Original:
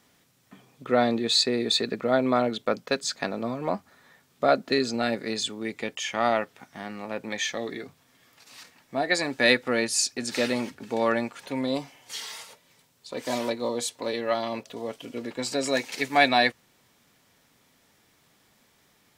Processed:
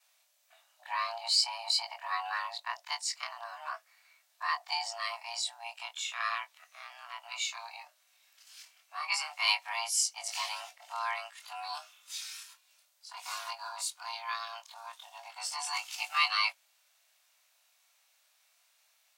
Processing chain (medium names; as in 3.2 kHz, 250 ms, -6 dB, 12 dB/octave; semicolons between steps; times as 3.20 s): short-time spectra conjugated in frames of 53 ms; frequency shift +470 Hz; amplifier tone stack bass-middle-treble 10-0-10